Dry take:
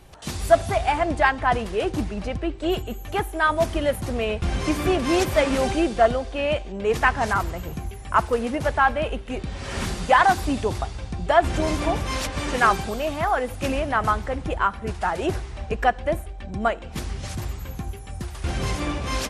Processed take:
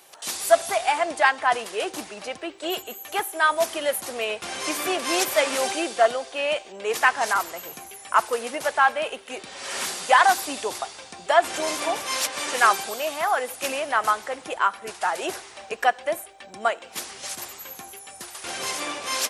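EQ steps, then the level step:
high-pass filter 510 Hz 12 dB per octave
high-shelf EQ 4,000 Hz +7 dB
high-shelf EQ 8,500 Hz +5 dB
0.0 dB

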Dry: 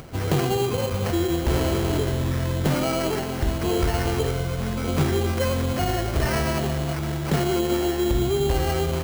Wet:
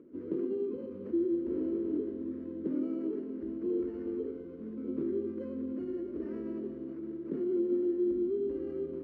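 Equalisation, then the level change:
four-pole ladder band-pass 350 Hz, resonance 45%
low-shelf EQ 240 Hz +10 dB
phaser with its sweep stopped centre 310 Hz, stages 4
−1.5 dB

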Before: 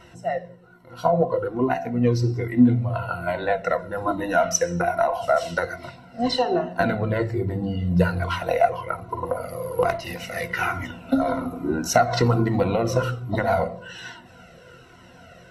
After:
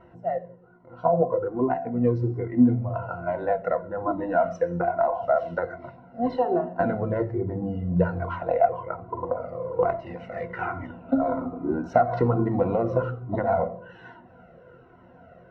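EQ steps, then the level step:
low-pass filter 1,000 Hz 12 dB per octave
low-shelf EQ 170 Hz −6.5 dB
0.0 dB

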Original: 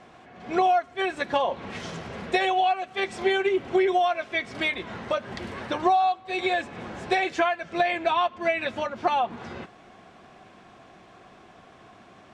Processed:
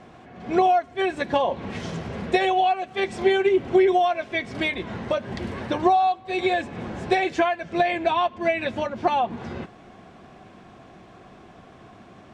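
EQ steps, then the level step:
dynamic equaliser 1,300 Hz, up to −6 dB, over −49 dBFS, Q 6.8
low-shelf EQ 440 Hz +8 dB
0.0 dB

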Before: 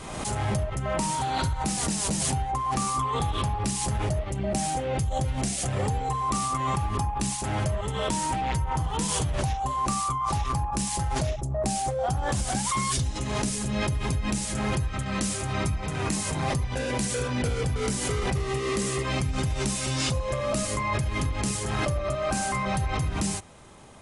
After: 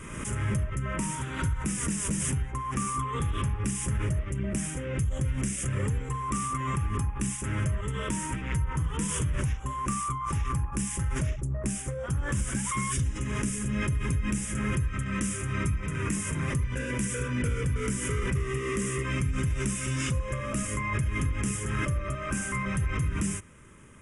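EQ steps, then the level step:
phaser with its sweep stopped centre 1,800 Hz, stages 4
0.0 dB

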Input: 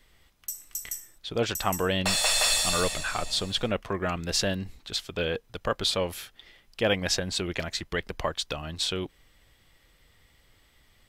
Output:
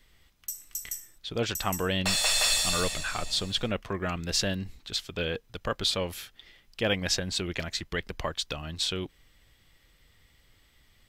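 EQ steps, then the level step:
parametric band 700 Hz −4 dB 2.2 octaves
parametric band 10,000 Hz −3 dB 0.48 octaves
0.0 dB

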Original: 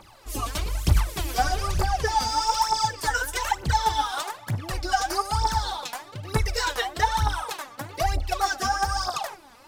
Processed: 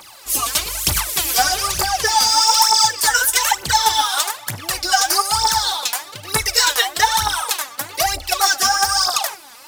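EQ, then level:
spectral tilt +3.5 dB per octave
+6.5 dB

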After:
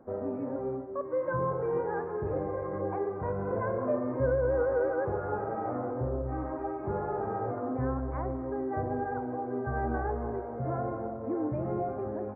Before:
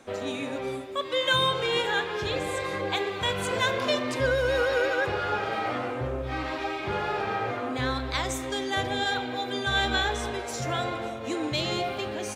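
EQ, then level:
Gaussian smoothing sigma 8.2 samples
0.0 dB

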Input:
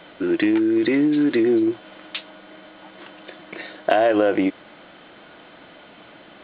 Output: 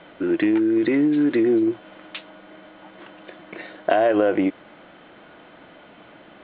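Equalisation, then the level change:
high-frequency loss of the air 250 metres
0.0 dB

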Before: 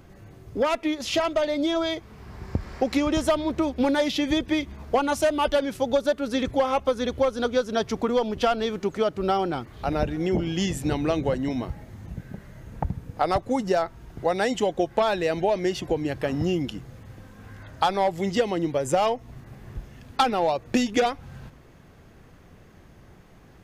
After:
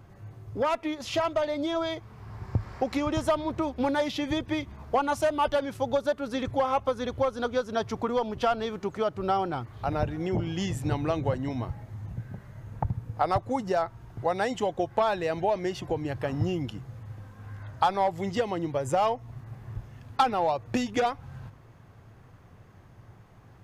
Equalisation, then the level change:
parametric band 110 Hz +13.5 dB 0.59 octaves
parametric band 990 Hz +7 dB 1.4 octaves
−7.0 dB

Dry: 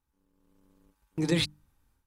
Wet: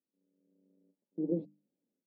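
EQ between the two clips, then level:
elliptic band-pass filter 190–590 Hz, stop band 50 dB
−3.5 dB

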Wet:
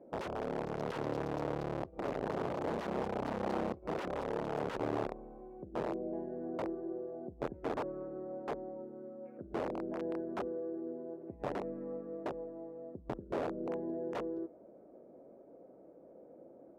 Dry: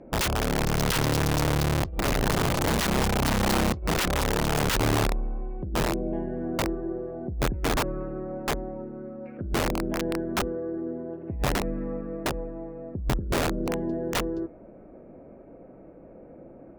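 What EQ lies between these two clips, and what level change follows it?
resonant band-pass 510 Hz, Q 1
−6.5 dB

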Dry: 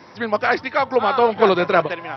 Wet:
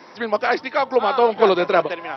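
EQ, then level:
dynamic equaliser 1,600 Hz, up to −4 dB, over −29 dBFS, Q 0.93
high-pass filter 240 Hz 12 dB per octave
+1.0 dB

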